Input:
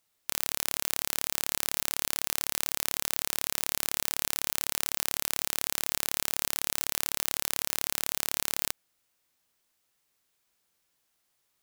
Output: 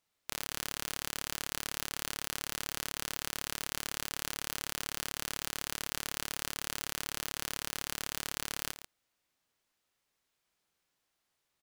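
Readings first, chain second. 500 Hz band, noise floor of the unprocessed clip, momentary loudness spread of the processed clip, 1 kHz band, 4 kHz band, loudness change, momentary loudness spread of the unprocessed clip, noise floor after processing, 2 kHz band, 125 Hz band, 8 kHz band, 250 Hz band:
−4.0 dB, −76 dBFS, 0 LU, −3.0 dB, −4.0 dB, −7.5 dB, 0 LU, −83 dBFS, −3.0 dB, −0.5 dB, −7.0 dB, −1.5 dB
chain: high-shelf EQ 7,600 Hz −9.5 dB
loudspeakers that aren't time-aligned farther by 12 metres −12 dB, 48 metres −10 dB
level −3 dB

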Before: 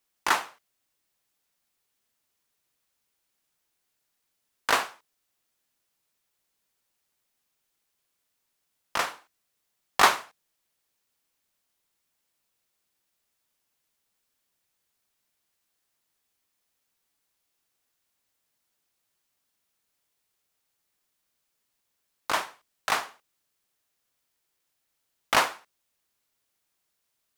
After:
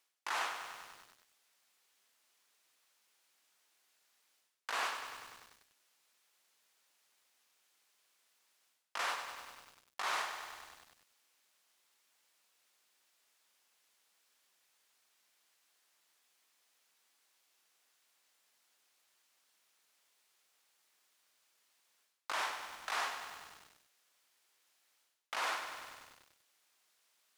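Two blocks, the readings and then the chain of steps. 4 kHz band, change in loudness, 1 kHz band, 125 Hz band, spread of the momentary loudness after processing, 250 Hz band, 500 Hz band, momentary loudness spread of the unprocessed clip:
−10.0 dB, −12.5 dB, −11.5 dB, below −20 dB, 18 LU, −18.0 dB, −13.5 dB, 18 LU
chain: meter weighting curve A
brickwall limiter −14.5 dBFS, peak gain reduction 10 dB
reversed playback
downward compressor 12 to 1, threshold −40 dBFS, peak gain reduction 19.5 dB
reversed playback
feedback echo at a low word length 98 ms, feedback 80%, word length 10 bits, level −8 dB
level +5.5 dB

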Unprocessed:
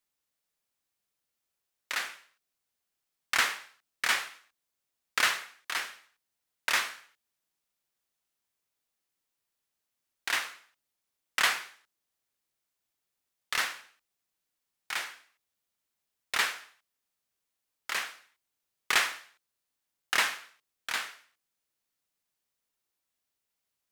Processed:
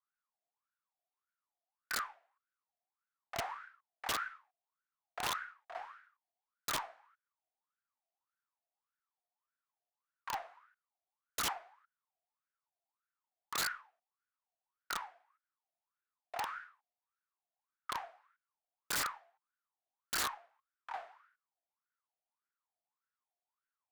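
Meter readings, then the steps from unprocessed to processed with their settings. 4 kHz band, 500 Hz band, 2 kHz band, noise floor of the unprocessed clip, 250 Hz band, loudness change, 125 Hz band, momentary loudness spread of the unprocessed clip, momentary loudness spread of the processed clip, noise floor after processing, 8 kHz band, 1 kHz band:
−10.0 dB, −3.5 dB, −13.0 dB, −85 dBFS, −2.0 dB, −9.5 dB, can't be measured, 16 LU, 18 LU, below −85 dBFS, −6.5 dB, −4.5 dB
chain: LFO wah 1.7 Hz 680–1,500 Hz, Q 13
wrap-around overflow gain 38 dB
harmonic generator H 8 −43 dB, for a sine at −38 dBFS
level +9.5 dB

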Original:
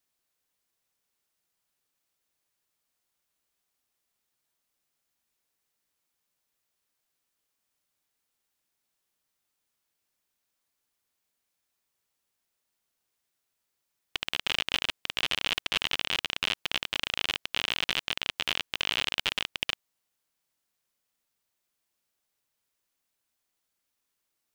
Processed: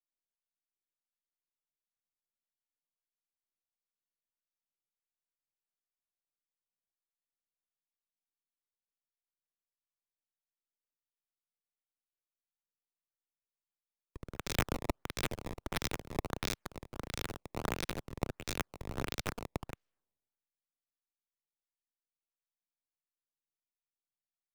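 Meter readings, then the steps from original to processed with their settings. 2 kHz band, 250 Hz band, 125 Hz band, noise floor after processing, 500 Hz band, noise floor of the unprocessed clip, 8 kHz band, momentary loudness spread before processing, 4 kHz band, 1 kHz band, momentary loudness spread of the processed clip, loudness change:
−12.0 dB, +5.0 dB, +8.0 dB, below −85 dBFS, +2.0 dB, −82 dBFS, −3.0 dB, 4 LU, −17.5 dB, −3.5 dB, 10 LU, −10.0 dB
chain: high-pass filter 250 Hz 12 dB per octave
flat-topped bell 2,300 Hz −10 dB 2.3 octaves
sample-and-hold swept by an LFO 17×, swing 160% 1.5 Hz
full-wave rectification
multiband upward and downward expander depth 70%
level +1 dB

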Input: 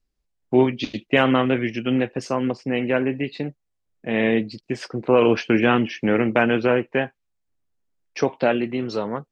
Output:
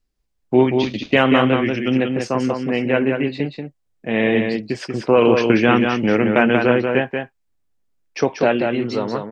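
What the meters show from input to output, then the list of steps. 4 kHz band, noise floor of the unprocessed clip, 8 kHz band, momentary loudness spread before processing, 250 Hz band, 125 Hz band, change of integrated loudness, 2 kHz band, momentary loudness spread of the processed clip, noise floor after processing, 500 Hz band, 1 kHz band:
+4.0 dB, −76 dBFS, can't be measured, 12 LU, +3.5 dB, +4.0 dB, +3.5 dB, +3.5 dB, 12 LU, −69 dBFS, +3.5 dB, +3.5 dB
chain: single-tap delay 186 ms −5 dB
level +2.5 dB

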